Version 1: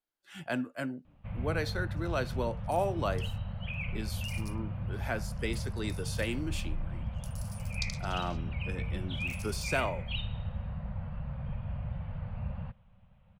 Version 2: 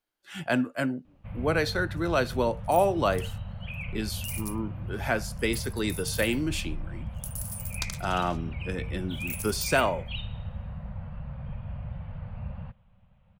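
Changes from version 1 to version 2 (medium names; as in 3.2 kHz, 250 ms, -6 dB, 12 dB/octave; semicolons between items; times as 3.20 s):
speech +7.5 dB; second sound: remove band-pass filter 4.7 kHz, Q 2.3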